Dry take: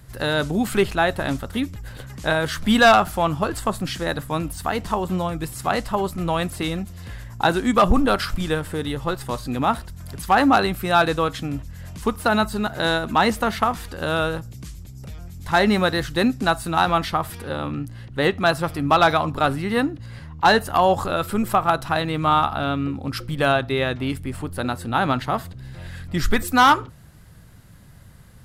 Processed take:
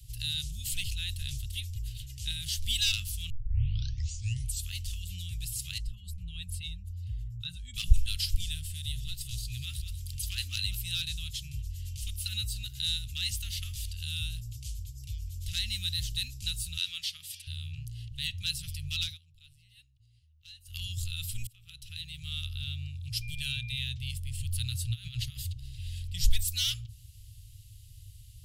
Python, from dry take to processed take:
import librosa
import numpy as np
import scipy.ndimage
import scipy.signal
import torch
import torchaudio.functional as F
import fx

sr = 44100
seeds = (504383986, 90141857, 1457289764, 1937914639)

y = fx.spec_expand(x, sr, power=1.5, at=(5.78, 7.74))
y = fx.echo_single(y, sr, ms=190, db=-12.5, at=(8.76, 10.75), fade=0.02)
y = fx.weighting(y, sr, curve='A', at=(16.77, 17.47))
y = fx.dmg_tone(y, sr, hz=2400.0, level_db=-31.0, at=(23.21, 23.79), fade=0.02)
y = fx.over_compress(y, sr, threshold_db=-24.0, ratio=-0.5, at=(24.38, 25.52), fade=0.02)
y = fx.edit(y, sr, fx.tape_start(start_s=3.3, length_s=1.39),
    fx.fade_down_up(start_s=19.01, length_s=1.81, db=-23.5, fade_s=0.17),
    fx.fade_in_span(start_s=21.47, length_s=1.06), tone=tone)
y = scipy.signal.sosfilt(scipy.signal.cheby1(4, 1.0, [110.0, 2800.0], 'bandstop', fs=sr, output='sos'), y)
y = fx.dynamic_eq(y, sr, hz=2700.0, q=1.5, threshold_db=-46.0, ratio=4.0, max_db=-4)